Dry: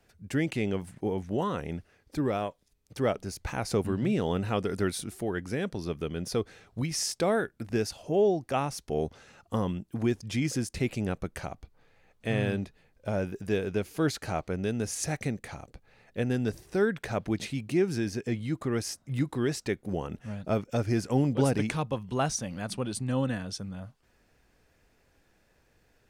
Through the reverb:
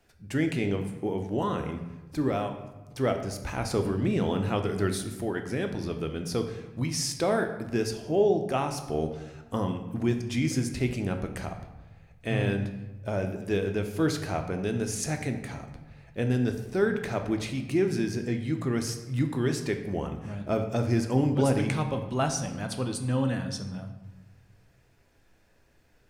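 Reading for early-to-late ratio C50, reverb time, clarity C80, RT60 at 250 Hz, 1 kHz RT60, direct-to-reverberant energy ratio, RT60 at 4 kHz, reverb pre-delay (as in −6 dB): 8.5 dB, 1.1 s, 10.5 dB, 1.4 s, 1.1 s, 5.0 dB, 0.70 s, 3 ms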